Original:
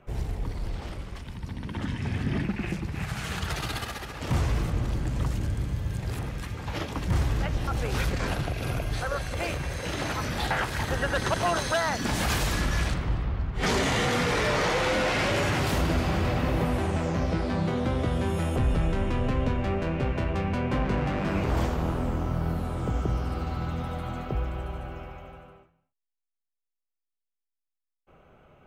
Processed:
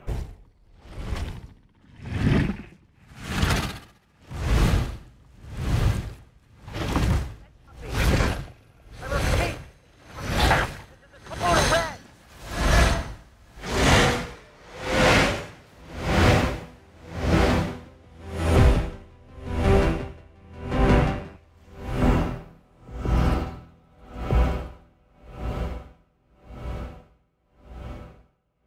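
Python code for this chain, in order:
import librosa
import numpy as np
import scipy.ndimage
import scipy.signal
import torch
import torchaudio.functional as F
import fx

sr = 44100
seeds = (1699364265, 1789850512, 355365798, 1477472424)

y = fx.tone_stack(x, sr, knobs='10-0-10', at=(21.36, 22.02))
y = fx.echo_diffused(y, sr, ms=1153, feedback_pct=61, wet_db=-7)
y = y * 10.0 ** (-35 * (0.5 - 0.5 * np.cos(2.0 * np.pi * 0.86 * np.arange(len(y)) / sr)) / 20.0)
y = y * 10.0 ** (8.0 / 20.0)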